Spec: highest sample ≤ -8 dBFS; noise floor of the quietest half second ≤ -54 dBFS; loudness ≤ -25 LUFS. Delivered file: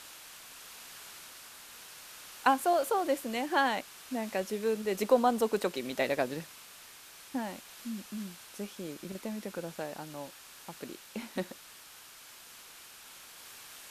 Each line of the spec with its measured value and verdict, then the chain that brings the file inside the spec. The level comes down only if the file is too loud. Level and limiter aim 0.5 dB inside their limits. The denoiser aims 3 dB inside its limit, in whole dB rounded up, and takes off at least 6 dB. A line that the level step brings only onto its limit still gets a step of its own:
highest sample -10.5 dBFS: pass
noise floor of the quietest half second -52 dBFS: fail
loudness -33.0 LUFS: pass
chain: noise reduction 6 dB, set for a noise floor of -52 dBFS

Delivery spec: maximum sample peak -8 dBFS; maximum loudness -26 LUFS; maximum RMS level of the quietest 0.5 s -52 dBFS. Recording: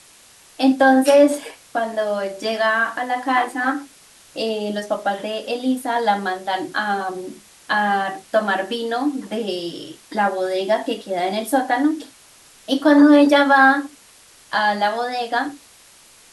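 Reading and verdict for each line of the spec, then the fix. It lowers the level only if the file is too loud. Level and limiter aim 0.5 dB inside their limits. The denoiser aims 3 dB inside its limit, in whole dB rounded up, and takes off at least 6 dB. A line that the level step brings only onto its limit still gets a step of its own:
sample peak -3.5 dBFS: fail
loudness -19.5 LUFS: fail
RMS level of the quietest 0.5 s -49 dBFS: fail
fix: trim -7 dB

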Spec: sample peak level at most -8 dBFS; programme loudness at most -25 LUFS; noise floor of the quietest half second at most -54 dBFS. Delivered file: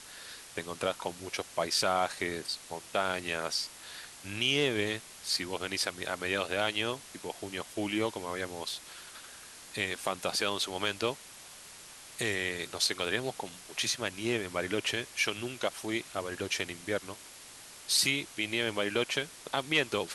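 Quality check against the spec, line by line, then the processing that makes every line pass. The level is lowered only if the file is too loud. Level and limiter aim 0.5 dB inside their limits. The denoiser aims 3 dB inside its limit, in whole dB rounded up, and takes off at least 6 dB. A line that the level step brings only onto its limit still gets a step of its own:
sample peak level -12.5 dBFS: pass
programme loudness -32.0 LUFS: pass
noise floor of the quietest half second -50 dBFS: fail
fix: noise reduction 7 dB, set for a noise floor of -50 dBFS

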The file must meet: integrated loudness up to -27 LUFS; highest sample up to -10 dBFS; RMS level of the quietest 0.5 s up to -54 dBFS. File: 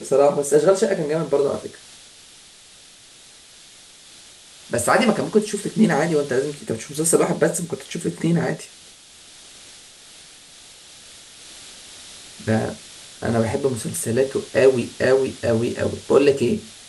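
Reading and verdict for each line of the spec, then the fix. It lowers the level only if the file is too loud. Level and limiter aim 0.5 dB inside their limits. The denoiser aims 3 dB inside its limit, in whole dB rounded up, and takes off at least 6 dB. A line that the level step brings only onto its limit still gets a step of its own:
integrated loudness -20.5 LUFS: fail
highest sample -3.5 dBFS: fail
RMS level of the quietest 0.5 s -47 dBFS: fail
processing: noise reduction 6 dB, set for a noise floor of -47 dBFS; trim -7 dB

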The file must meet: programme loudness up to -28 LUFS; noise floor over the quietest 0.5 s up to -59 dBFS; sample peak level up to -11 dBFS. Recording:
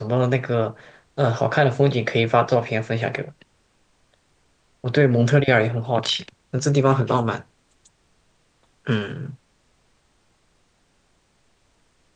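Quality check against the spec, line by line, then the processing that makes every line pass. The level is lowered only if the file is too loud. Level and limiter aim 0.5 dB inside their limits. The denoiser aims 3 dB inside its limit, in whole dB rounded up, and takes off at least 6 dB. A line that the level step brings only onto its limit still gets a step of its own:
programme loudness -21.0 LUFS: fail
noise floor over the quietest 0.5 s -63 dBFS: pass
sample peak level -3.5 dBFS: fail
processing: trim -7.5 dB; peak limiter -11.5 dBFS

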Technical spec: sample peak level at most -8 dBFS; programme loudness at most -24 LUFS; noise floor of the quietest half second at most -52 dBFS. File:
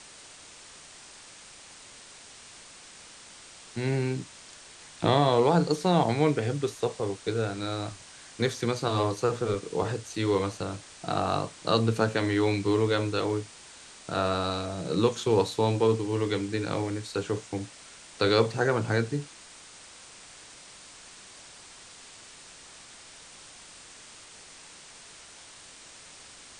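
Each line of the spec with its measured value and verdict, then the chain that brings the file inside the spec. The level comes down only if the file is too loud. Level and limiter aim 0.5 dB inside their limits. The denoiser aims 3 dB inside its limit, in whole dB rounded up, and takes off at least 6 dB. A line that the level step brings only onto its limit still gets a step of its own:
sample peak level -8.5 dBFS: pass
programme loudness -27.5 LUFS: pass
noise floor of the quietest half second -49 dBFS: fail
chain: noise reduction 6 dB, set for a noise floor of -49 dBFS

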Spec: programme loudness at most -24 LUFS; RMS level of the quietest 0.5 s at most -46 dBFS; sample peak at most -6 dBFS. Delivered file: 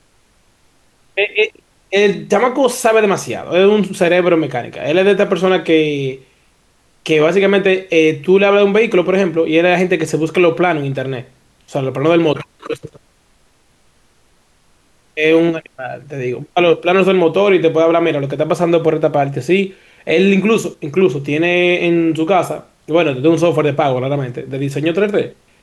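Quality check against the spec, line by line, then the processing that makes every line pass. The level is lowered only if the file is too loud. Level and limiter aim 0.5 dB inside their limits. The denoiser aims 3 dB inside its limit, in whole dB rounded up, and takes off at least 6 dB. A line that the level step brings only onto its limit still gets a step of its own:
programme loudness -14.5 LUFS: fail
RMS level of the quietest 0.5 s -55 dBFS: pass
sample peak -1.5 dBFS: fail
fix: trim -10 dB

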